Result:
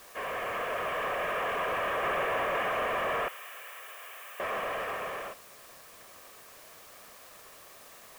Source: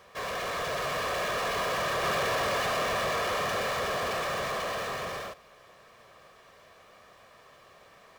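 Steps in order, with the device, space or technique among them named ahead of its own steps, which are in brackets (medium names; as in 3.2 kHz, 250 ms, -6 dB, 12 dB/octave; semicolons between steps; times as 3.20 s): army field radio (band-pass 330–2800 Hz; CVSD coder 16 kbps; white noise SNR 20 dB); 3.28–4.40 s: differentiator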